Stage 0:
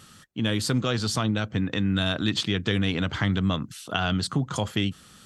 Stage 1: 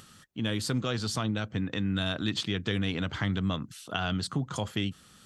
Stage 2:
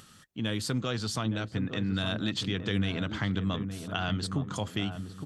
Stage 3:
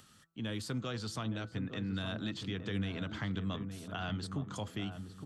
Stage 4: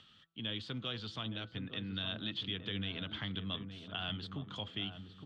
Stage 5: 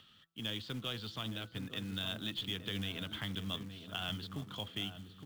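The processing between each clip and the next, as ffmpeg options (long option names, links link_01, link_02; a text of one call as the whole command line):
ffmpeg -i in.wav -af "acompressor=mode=upward:threshold=-45dB:ratio=2.5,volume=-5dB" out.wav
ffmpeg -i in.wav -filter_complex "[0:a]asplit=2[link_01][link_02];[link_02]adelay=866,lowpass=frequency=840:poles=1,volume=-7dB,asplit=2[link_03][link_04];[link_04]adelay=866,lowpass=frequency=840:poles=1,volume=0.38,asplit=2[link_05][link_06];[link_06]adelay=866,lowpass=frequency=840:poles=1,volume=0.38,asplit=2[link_07][link_08];[link_08]adelay=866,lowpass=frequency=840:poles=1,volume=0.38[link_09];[link_01][link_03][link_05][link_07][link_09]amix=inputs=5:normalize=0,volume=-1dB" out.wav
ffmpeg -i in.wav -filter_complex "[0:a]bandreject=frequency=165.5:width_type=h:width=4,bandreject=frequency=331:width_type=h:width=4,bandreject=frequency=496.5:width_type=h:width=4,bandreject=frequency=662:width_type=h:width=4,bandreject=frequency=827.5:width_type=h:width=4,bandreject=frequency=993:width_type=h:width=4,bandreject=frequency=1158.5:width_type=h:width=4,bandreject=frequency=1324:width_type=h:width=4,bandreject=frequency=1489.5:width_type=h:width=4,acrossover=split=210|1200|1900[link_01][link_02][link_03][link_04];[link_04]alimiter=level_in=4.5dB:limit=-24dB:level=0:latency=1:release=52,volume=-4.5dB[link_05];[link_01][link_02][link_03][link_05]amix=inputs=4:normalize=0,volume=-6.5dB" out.wav
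ffmpeg -i in.wav -af "lowpass=frequency=3300:width_type=q:width=4.6,volume=-5dB" out.wav
ffmpeg -i in.wav -af "aeval=exprs='0.075*(cos(1*acos(clip(val(0)/0.075,-1,1)))-cos(1*PI/2))+0.00473*(cos(3*acos(clip(val(0)/0.075,-1,1)))-cos(3*PI/2))+0.00237*(cos(4*acos(clip(val(0)/0.075,-1,1)))-cos(4*PI/2))':channel_layout=same,acrusher=bits=4:mode=log:mix=0:aa=0.000001,volume=1.5dB" out.wav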